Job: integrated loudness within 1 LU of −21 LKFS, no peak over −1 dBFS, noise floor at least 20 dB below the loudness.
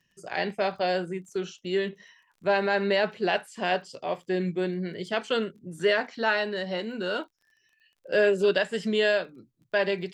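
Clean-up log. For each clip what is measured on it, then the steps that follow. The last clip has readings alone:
crackle rate 21 per second; integrated loudness −27.5 LKFS; sample peak −11.0 dBFS; target loudness −21.0 LKFS
→ click removal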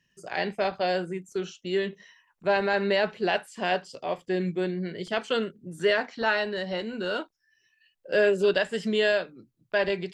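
crackle rate 0 per second; integrated loudness −27.5 LKFS; sample peak −11.0 dBFS; target loudness −21.0 LKFS
→ level +6.5 dB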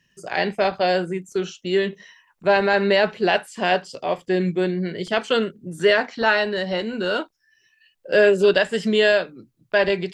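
integrated loudness −21.0 LKFS; sample peak −4.5 dBFS; background noise floor −67 dBFS

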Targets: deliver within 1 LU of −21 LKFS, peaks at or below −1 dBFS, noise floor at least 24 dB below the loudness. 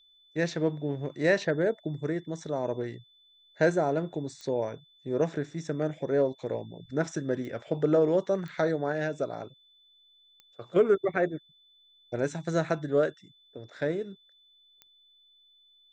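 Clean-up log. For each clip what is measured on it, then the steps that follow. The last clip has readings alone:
number of clicks 5; interfering tone 3,500 Hz; level of the tone −59 dBFS; integrated loudness −29.5 LKFS; sample peak −12.0 dBFS; target loudness −21.0 LKFS
→ click removal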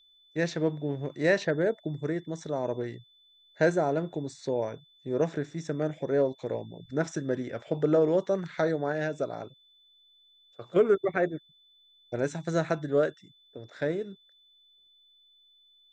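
number of clicks 0; interfering tone 3,500 Hz; level of the tone −59 dBFS
→ notch filter 3,500 Hz, Q 30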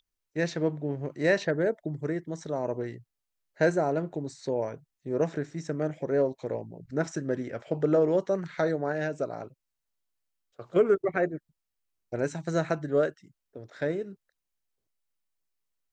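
interfering tone none found; integrated loudness −29.5 LKFS; sample peak −12.0 dBFS; target loudness −21.0 LKFS
→ level +8.5 dB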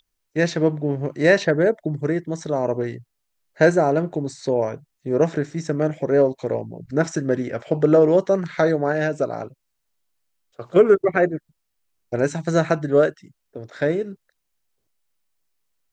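integrated loudness −21.0 LKFS; sample peak −3.5 dBFS; background noise floor −75 dBFS

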